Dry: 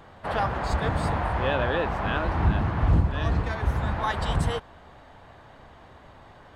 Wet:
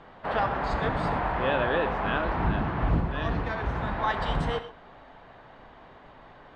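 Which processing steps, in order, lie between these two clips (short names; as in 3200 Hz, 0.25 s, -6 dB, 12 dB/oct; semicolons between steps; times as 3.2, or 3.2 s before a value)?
LPF 3800 Hz 12 dB/oct; bell 83 Hz -11.5 dB 0.93 oct; non-linear reverb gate 0.15 s flat, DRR 9.5 dB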